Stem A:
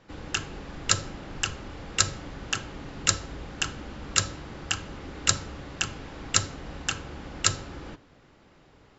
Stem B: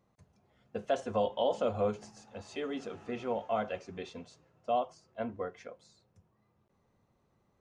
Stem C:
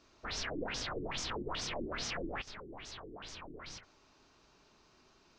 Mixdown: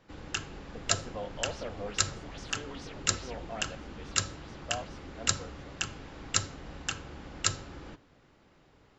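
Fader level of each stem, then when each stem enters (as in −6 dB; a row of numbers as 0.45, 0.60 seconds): −5.0, −9.0, −10.5 decibels; 0.00, 0.00, 1.20 seconds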